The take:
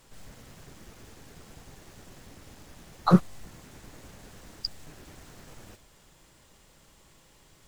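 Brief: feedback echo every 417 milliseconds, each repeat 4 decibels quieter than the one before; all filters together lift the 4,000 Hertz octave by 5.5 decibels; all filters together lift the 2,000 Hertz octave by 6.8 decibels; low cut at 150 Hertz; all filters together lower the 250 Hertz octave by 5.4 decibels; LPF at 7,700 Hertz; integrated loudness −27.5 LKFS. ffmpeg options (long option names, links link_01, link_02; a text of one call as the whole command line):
ffmpeg -i in.wav -af "highpass=150,lowpass=7700,equalizer=frequency=250:width_type=o:gain=-7,equalizer=frequency=2000:width_type=o:gain=8.5,equalizer=frequency=4000:width_type=o:gain=6,aecho=1:1:417|834|1251|1668|2085|2502|2919|3336|3753:0.631|0.398|0.25|0.158|0.0994|0.0626|0.0394|0.0249|0.0157,volume=4dB" out.wav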